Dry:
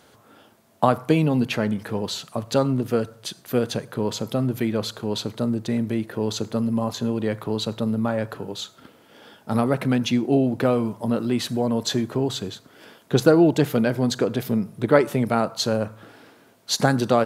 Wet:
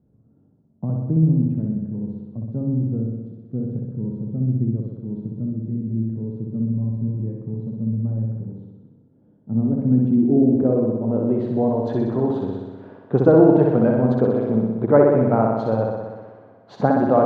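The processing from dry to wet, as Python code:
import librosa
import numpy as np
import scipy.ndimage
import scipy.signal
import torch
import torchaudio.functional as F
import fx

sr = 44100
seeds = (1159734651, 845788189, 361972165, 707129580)

y = fx.filter_sweep_lowpass(x, sr, from_hz=180.0, to_hz=880.0, start_s=9.18, end_s=11.94, q=1.1)
y = fx.room_flutter(y, sr, wall_m=10.7, rt60_s=1.3)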